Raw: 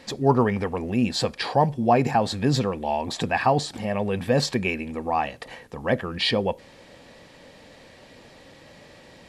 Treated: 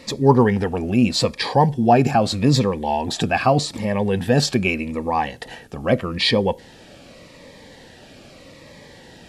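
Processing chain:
phaser whose notches keep moving one way falling 0.82 Hz
level +6 dB

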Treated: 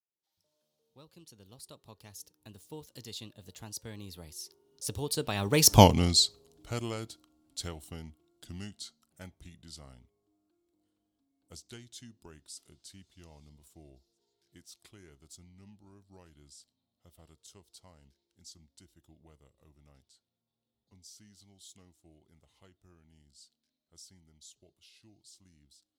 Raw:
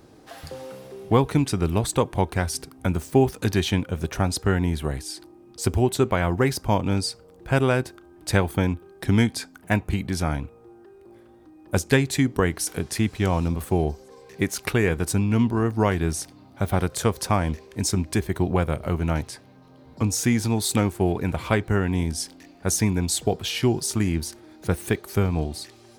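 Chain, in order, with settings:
fade in at the beginning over 2.49 s
source passing by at 0:05.79, 47 m/s, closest 3.7 metres
high shelf with overshoot 2,700 Hz +11 dB, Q 1.5
level +6 dB

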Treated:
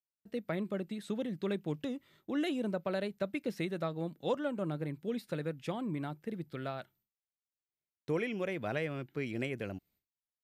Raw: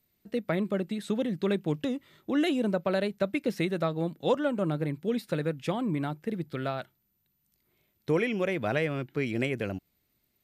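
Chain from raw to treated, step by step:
downward expander −56 dBFS
level −7 dB

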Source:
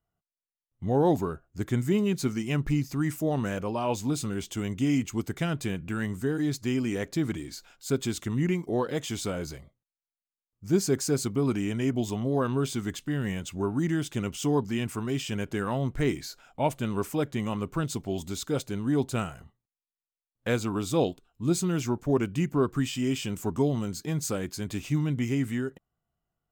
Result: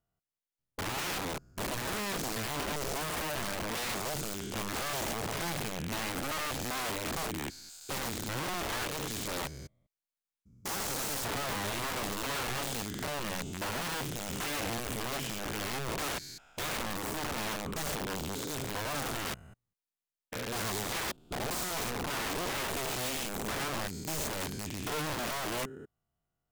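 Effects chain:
spectrum averaged block by block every 200 ms
wrap-around overflow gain 30 dB

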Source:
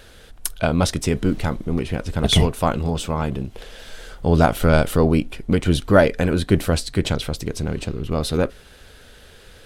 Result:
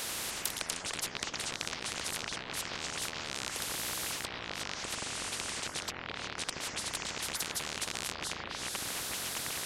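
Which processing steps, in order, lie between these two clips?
loose part that buzzes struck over −29 dBFS, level −18 dBFS
high-pass filter 250 Hz 12 dB per octave
treble cut that deepens with the level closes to 930 Hz, closed at −15.5 dBFS
parametric band 3,800 Hz +10.5 dB 0.45 octaves
compressor whose output falls as the input rises −28 dBFS, ratio −0.5
delay with pitch and tempo change per echo 91 ms, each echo −5 semitones, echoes 3
every bin compressed towards the loudest bin 10 to 1
level −4.5 dB

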